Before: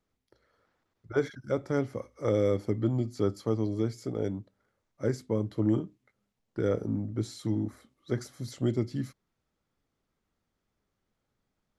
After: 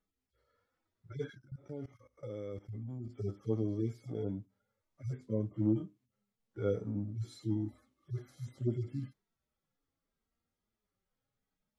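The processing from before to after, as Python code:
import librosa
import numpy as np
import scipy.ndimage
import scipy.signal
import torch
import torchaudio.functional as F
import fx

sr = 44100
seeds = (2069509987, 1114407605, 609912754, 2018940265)

y = fx.hpss_only(x, sr, part='harmonic')
y = fx.level_steps(y, sr, step_db=19, at=(1.37, 3.08), fade=0.02)
y = F.gain(torch.from_numpy(y), -3.5).numpy()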